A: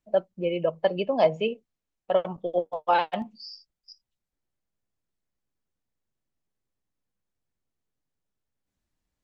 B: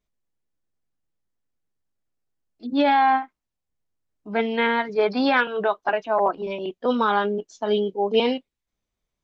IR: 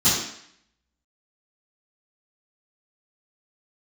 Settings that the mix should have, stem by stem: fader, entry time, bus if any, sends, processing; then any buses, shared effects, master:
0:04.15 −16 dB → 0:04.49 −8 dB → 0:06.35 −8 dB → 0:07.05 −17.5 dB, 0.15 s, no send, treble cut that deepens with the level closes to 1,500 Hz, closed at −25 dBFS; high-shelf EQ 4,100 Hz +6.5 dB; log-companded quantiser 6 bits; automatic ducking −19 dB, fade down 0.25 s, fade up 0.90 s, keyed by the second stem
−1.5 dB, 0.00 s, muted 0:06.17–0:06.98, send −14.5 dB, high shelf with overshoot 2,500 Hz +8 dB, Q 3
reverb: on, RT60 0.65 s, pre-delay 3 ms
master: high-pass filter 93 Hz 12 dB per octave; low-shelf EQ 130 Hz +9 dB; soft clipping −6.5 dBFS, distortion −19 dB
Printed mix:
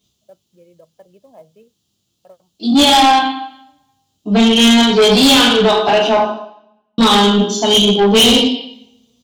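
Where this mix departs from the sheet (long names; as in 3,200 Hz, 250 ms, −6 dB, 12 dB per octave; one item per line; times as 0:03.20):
stem A −16.0 dB → −22.0 dB
stem B −1.5 dB → +9.5 dB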